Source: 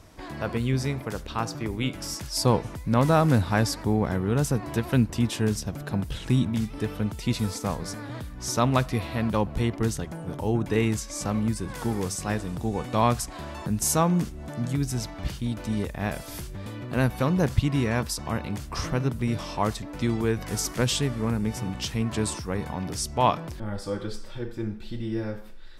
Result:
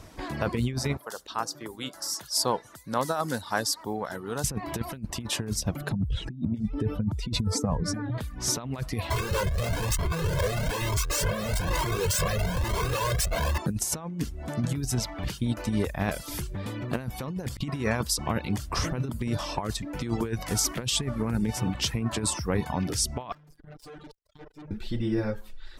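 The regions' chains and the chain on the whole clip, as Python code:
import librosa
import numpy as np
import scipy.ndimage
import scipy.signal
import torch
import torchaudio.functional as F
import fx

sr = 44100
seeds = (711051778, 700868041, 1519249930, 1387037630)

y = fx.chain(x, sr, fx.highpass(hz=1100.0, slope=6),
    fx.peak_eq(hz=2400.0, db=-12.5, octaves=0.68), at=(0.97, 4.44))
y = fx.chain(y, sr, fx.spec_expand(power=1.6),
    fx.over_compress(threshold_db=-28.0, ratio=-0.5), at=(5.92, 8.18))
y = fx.chain(y, sr, fx.schmitt(flips_db=-40.0),
    fx.comb(ms=1.9, depth=0.68),
    fx.comb_cascade(direction='rising', hz=1.1), at=(9.1, 13.58))
y = fx.chain(y, sr, fx.notch(hz=860.0, q=17.0),
    fx.robotise(hz=150.0),
    fx.tube_stage(drive_db=46.0, bias=0.3), at=(23.32, 24.71))
y = fx.dereverb_blind(y, sr, rt60_s=0.61)
y = fx.over_compress(y, sr, threshold_db=-28.0, ratio=-0.5)
y = F.gain(torch.from_numpy(y), 2.0).numpy()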